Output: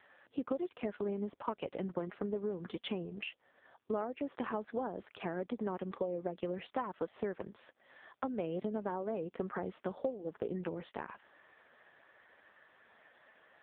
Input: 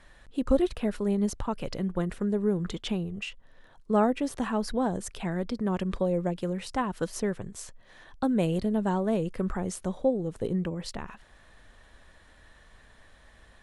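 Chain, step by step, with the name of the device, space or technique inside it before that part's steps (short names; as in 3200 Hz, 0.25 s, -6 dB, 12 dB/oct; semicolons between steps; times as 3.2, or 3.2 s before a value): voicemail (BPF 320–3100 Hz; compressor 10:1, threshold -33 dBFS, peak gain reduction 14.5 dB; gain +1.5 dB; AMR-NB 5.15 kbps 8000 Hz)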